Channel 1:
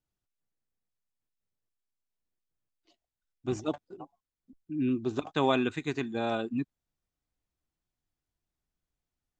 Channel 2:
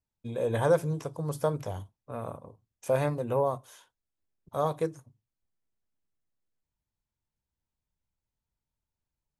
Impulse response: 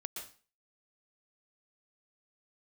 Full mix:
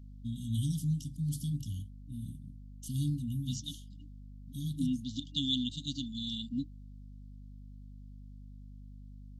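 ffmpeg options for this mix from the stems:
-filter_complex "[0:a]equalizer=frequency=4400:width_type=o:width=1.5:gain=12.5,volume=-3.5dB[link_01];[1:a]aeval=exprs='val(0)+0.00398*(sin(2*PI*50*n/s)+sin(2*PI*2*50*n/s)/2+sin(2*PI*3*50*n/s)/3+sin(2*PI*4*50*n/s)/4+sin(2*PI*5*50*n/s)/5)':channel_layout=same,volume=0.5dB[link_02];[link_01][link_02]amix=inputs=2:normalize=0,afftfilt=real='re*(1-between(b*sr/4096,300,2800))':imag='im*(1-between(b*sr/4096,300,2800))':win_size=4096:overlap=0.75"

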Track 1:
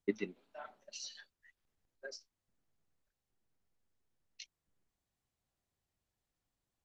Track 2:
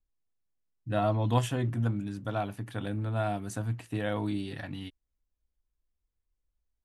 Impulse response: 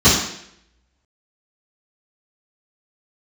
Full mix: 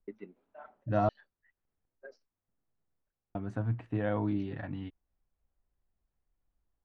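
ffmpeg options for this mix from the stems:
-filter_complex "[0:a]alimiter=level_in=6dB:limit=-24dB:level=0:latency=1:release=452,volume=-6dB,volume=-1dB[link_01];[1:a]volume=0.5dB,asplit=3[link_02][link_03][link_04];[link_02]atrim=end=1.09,asetpts=PTS-STARTPTS,afade=type=out:start_time=1.086:duration=0.004:curve=hsin[link_05];[link_03]atrim=start=1.09:end=3.35,asetpts=PTS-STARTPTS,volume=0[link_06];[link_04]atrim=start=3.35,asetpts=PTS-STARTPTS,afade=type=in:duration=0.004:curve=hsin[link_07];[link_05][link_06][link_07]concat=n=3:v=0:a=1[link_08];[link_01][link_08]amix=inputs=2:normalize=0,lowpass=1600"

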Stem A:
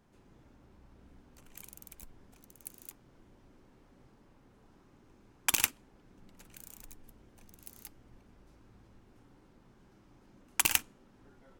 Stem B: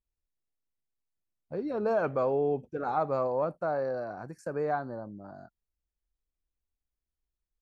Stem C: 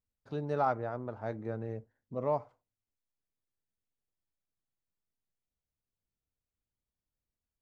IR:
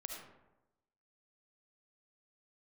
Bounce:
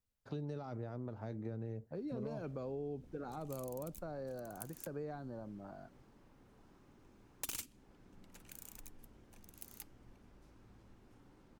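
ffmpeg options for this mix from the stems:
-filter_complex "[0:a]adelay=1950,volume=-2dB[link_01];[1:a]adelay=400,volume=-4.5dB[link_02];[2:a]alimiter=level_in=2dB:limit=-24dB:level=0:latency=1:release=21,volume=-2dB,volume=1.5dB[link_03];[link_01][link_02][link_03]amix=inputs=3:normalize=0,acrossover=split=370|3000[link_04][link_05][link_06];[link_05]acompressor=threshold=-47dB:ratio=10[link_07];[link_04][link_07][link_06]amix=inputs=3:normalize=0,aeval=exprs='0.0422*(abs(mod(val(0)/0.0422+3,4)-2)-1)':channel_layout=same,acompressor=threshold=-39dB:ratio=3"

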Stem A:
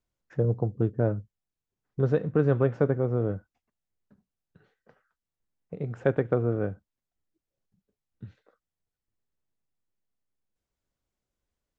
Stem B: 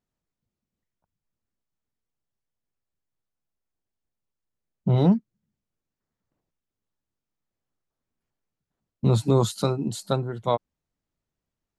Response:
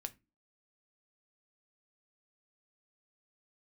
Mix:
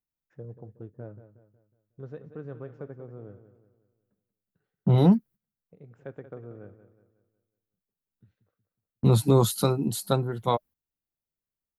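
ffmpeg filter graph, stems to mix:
-filter_complex "[0:a]volume=-17dB,asplit=2[link_01][link_02];[link_02]volume=-12dB[link_03];[1:a]bandreject=frequency=610:width=12,agate=range=-14dB:threshold=-45dB:ratio=16:detection=peak,aexciter=amount=3.9:drive=7.2:freq=10000,volume=0.5dB[link_04];[link_03]aecho=0:1:183|366|549|732|915|1098:1|0.42|0.176|0.0741|0.0311|0.0131[link_05];[link_01][link_04][link_05]amix=inputs=3:normalize=0"

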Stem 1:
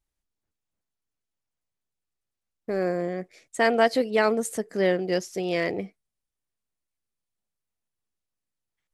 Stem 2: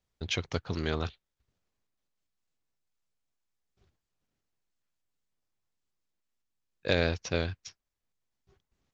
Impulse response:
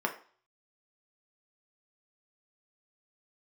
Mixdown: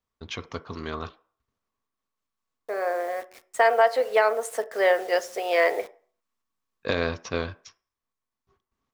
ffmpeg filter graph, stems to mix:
-filter_complex "[0:a]highpass=frequency=560:width=0.5412,highpass=frequency=560:width=1.3066,highshelf=frequency=2100:gain=-9,acrusher=bits=8:mix=0:aa=0.000001,volume=1dB,asplit=2[link_01][link_02];[link_02]volume=-11.5dB[link_03];[1:a]equalizer=frequency=1100:width_type=o:width=0.32:gain=10.5,volume=-6dB,asplit=3[link_04][link_05][link_06];[link_05]volume=-12dB[link_07];[link_06]apad=whole_len=394011[link_08];[link_01][link_08]sidechaincompress=threshold=-56dB:ratio=8:attack=9.2:release=1170[link_09];[2:a]atrim=start_sample=2205[link_10];[link_03][link_07]amix=inputs=2:normalize=0[link_11];[link_11][link_10]afir=irnorm=-1:irlink=0[link_12];[link_09][link_04][link_12]amix=inputs=3:normalize=0,equalizer=frequency=180:width=0.62:gain=2.5,dynaudnorm=framelen=200:gausssize=21:maxgain=11.5dB,alimiter=limit=-9dB:level=0:latency=1:release=356"

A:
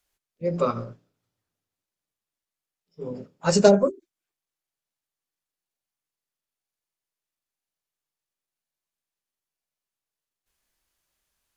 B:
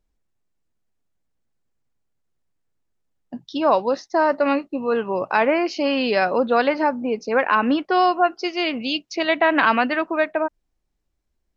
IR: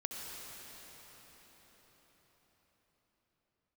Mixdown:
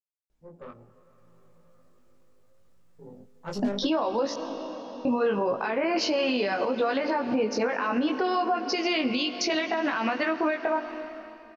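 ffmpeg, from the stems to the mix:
-filter_complex "[0:a]afwtdn=0.0251,aeval=exprs='(tanh(7.08*val(0)+0.55)-tanh(0.55))/7.08':channel_layout=same,volume=-18dB,asplit=2[link_01][link_02];[link_02]volume=-15dB[link_03];[1:a]acompressor=threshold=-24dB:ratio=6,alimiter=limit=-20dB:level=0:latency=1:release=210,adelay=300,volume=2dB,asplit=3[link_04][link_05][link_06];[link_04]atrim=end=4.34,asetpts=PTS-STARTPTS,afade=type=out:start_time=4.336:duration=0.004:curve=hsin[link_07];[link_05]atrim=start=4.34:end=5.05,asetpts=PTS-STARTPTS,volume=0[link_08];[link_06]atrim=start=5.05,asetpts=PTS-STARTPTS,afade=type=in:duration=0.004:curve=hsin[link_09];[link_07][link_08][link_09]concat=n=3:v=0:a=1,asplit=2[link_10][link_11];[link_11]volume=-11dB[link_12];[2:a]atrim=start_sample=2205[link_13];[link_03][link_12]amix=inputs=2:normalize=0[link_14];[link_14][link_13]afir=irnorm=-1:irlink=0[link_15];[link_01][link_10][link_15]amix=inputs=3:normalize=0,dynaudnorm=framelen=180:gausssize=11:maxgain=11dB,flanger=delay=18:depth=2.1:speed=0.7,alimiter=limit=-17.5dB:level=0:latency=1:release=159"

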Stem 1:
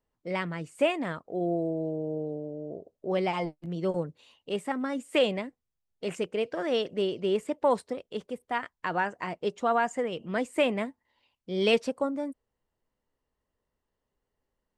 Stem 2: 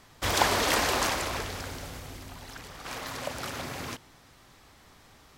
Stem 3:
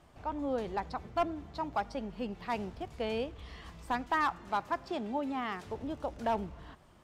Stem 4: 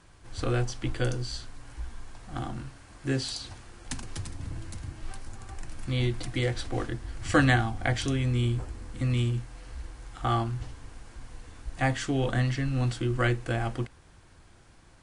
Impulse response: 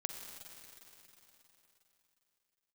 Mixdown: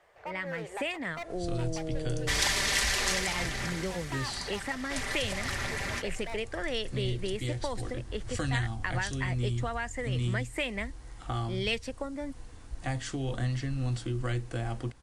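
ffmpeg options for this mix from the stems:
-filter_complex "[0:a]dynaudnorm=framelen=120:gausssize=9:maxgain=12dB,volume=-10dB[link_01];[1:a]lowpass=frequency=11000:width=0.5412,lowpass=frequency=11000:width=1.3066,agate=range=-33dB:threshold=-47dB:ratio=3:detection=peak,aecho=1:1:5.1:0.58,adelay=2050,volume=0.5dB[link_02];[2:a]lowshelf=frequency=350:width_type=q:width=3:gain=-10.5,asoftclip=type=hard:threshold=-29.5dB,volume=-4dB[link_03];[3:a]equalizer=frequency=1900:width=1.7:gain=-13.5,adelay=1050,volume=-2dB[link_04];[link_01][link_02][link_03][link_04]amix=inputs=4:normalize=0,equalizer=frequency=1900:width_type=o:width=0.55:gain=11.5,acrossover=split=130|3000[link_05][link_06][link_07];[link_06]acompressor=threshold=-33dB:ratio=6[link_08];[link_05][link_08][link_07]amix=inputs=3:normalize=0"

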